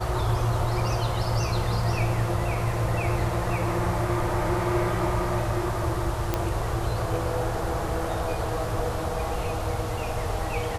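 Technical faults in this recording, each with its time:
0:06.34: click −10 dBFS

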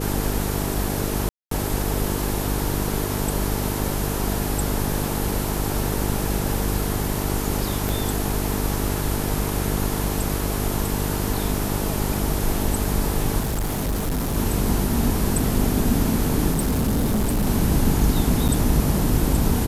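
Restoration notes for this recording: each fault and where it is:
mains buzz 50 Hz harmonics 9 −26 dBFS
0:01.29–0:01.51: drop-out 223 ms
0:07.89: click
0:13.39–0:14.37: clipping −20.5 dBFS
0:16.51–0:17.47: clipping −17.5 dBFS
0:18.48–0:18.49: drop-out 7.1 ms

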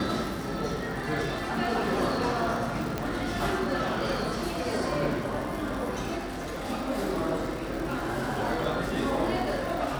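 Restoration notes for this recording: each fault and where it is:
surface crackle 180 per second −34 dBFS
0:02.98: click −15 dBFS
0:06.17–0:06.66: clipping −31 dBFS

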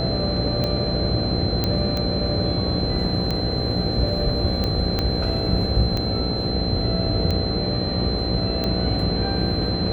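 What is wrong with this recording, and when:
mains buzz 60 Hz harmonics 13 −27 dBFS
scratch tick 45 rpm −12 dBFS
whistle 4,100 Hz −28 dBFS
0:01.64: click −8 dBFS
0:04.99: click −9 dBFS

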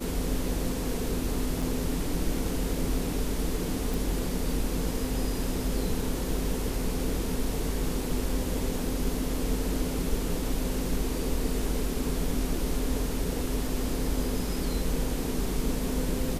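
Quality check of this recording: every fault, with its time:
0:01.62: drop-out 4.7 ms
0:03.94: click

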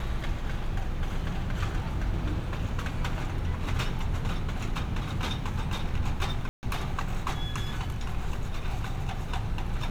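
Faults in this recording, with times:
0:06.49–0:06.63: drop-out 139 ms

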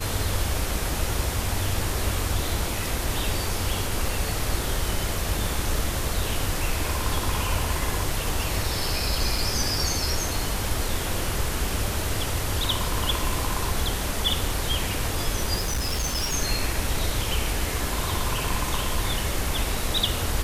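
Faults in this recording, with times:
0:09.38: drop-out 3.2 ms
0:15.55–0:16.35: clipping −22 dBFS

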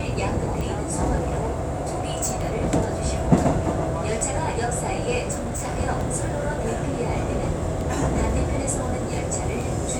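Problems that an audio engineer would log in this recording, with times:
scratch tick 33 1/3 rpm
0:01.15–0:02.57: clipping −20.5 dBFS
0:05.31–0:05.78: clipping −24 dBFS

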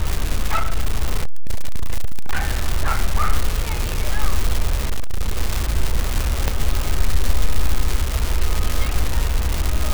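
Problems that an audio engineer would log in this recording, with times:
surface crackle 470 per second −16 dBFS
0:00.53–0:02.40: clipping −11.5 dBFS
0:04.85–0:05.38: clipping −14 dBFS
0:06.48: click −4 dBFS

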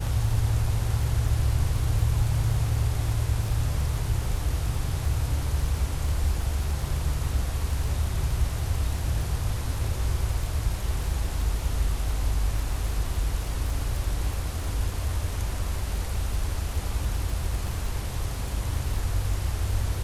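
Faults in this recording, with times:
surface crackle 14 per second −29 dBFS

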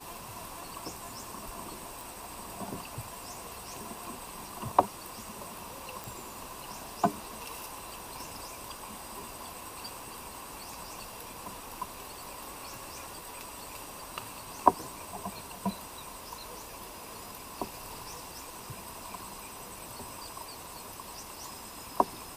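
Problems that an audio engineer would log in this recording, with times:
0:02.01: click
0:06.04: click

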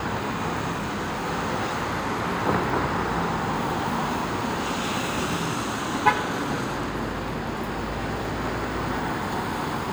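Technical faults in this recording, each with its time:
0:00.72–0:01.26: clipping −25 dBFS

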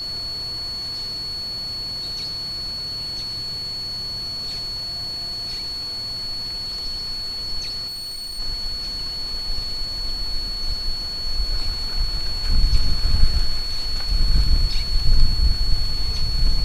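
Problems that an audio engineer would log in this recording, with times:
whistle 4,400 Hz −26 dBFS
0:07.87–0:08.40: clipping −28.5 dBFS

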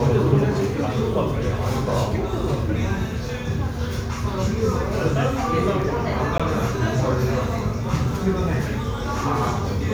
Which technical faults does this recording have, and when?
0:06.38–0:06.40: drop-out 16 ms

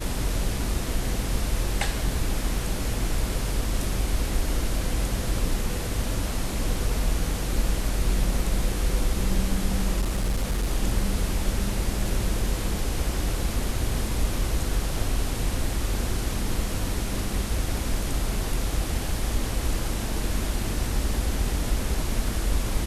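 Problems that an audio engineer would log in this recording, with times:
0:10.00–0:10.67: clipping −20.5 dBFS

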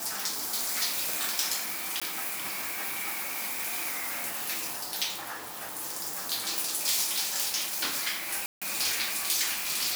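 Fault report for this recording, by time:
0:02.00–0:02.02: drop-out 16 ms
0:08.46–0:08.62: drop-out 156 ms

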